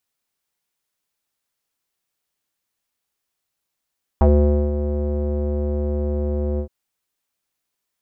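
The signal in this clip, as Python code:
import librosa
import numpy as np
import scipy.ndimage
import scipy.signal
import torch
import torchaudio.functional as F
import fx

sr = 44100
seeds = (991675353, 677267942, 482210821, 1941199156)

y = fx.sub_voice(sr, note=38, wave='square', cutoff_hz=470.0, q=3.7, env_oct=1.0, env_s=0.07, attack_ms=1.2, decay_s=0.5, sustain_db=-10.0, release_s=0.09, note_s=2.38, slope=12)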